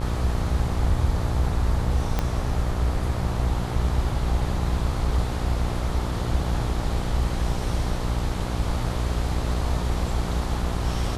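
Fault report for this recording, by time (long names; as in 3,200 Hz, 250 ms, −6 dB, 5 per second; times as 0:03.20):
mains buzz 60 Hz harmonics 22 −28 dBFS
0:02.19: click −10 dBFS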